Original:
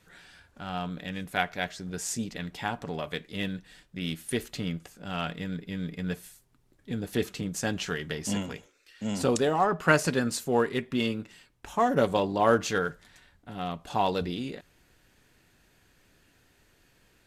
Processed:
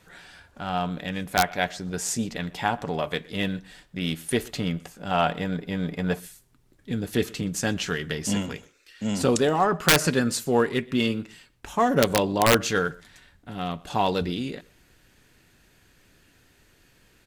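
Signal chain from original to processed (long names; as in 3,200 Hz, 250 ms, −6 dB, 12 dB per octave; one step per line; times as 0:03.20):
slap from a distant wall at 21 metres, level −24 dB
wrap-around overflow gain 12.5 dB
parametric band 760 Hz +3.5 dB 1.3 octaves, from 0:05.11 +10.5 dB, from 0:06.20 −2.5 dB
level +4.5 dB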